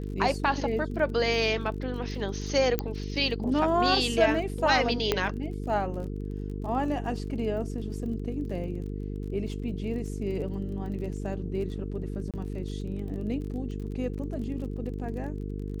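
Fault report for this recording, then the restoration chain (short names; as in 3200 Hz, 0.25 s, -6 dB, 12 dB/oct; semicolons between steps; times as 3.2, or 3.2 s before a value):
buzz 50 Hz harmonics 9 -34 dBFS
crackle 33/s -39 dBFS
2.79 pop -12 dBFS
5.12 pop -9 dBFS
12.31–12.34 gap 27 ms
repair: de-click; de-hum 50 Hz, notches 9; interpolate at 12.31, 27 ms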